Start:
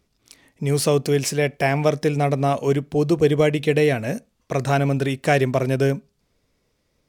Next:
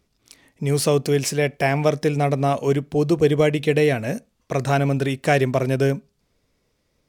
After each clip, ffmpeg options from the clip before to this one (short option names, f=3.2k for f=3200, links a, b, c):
-af anull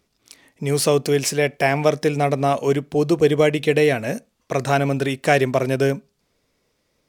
-af "lowshelf=f=160:g=-8.5,volume=2.5dB"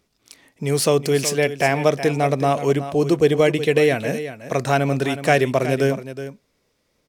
-af "aecho=1:1:370:0.251"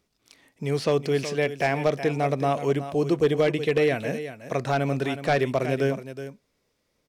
-filter_complex "[0:a]aeval=exprs='0.447*(abs(mod(val(0)/0.447+3,4)-2)-1)':c=same,acrossover=split=4900[a][b];[b]acompressor=threshold=-45dB:ratio=4:attack=1:release=60[c];[a][c]amix=inputs=2:normalize=0,volume=-5dB"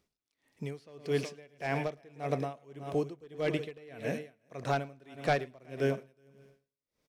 -af "aecho=1:1:109|218|327|436|545:0.178|0.0942|0.05|0.0265|0.014,aeval=exprs='val(0)*pow(10,-27*(0.5-0.5*cos(2*PI*1.7*n/s))/20)':c=same,volume=-4.5dB"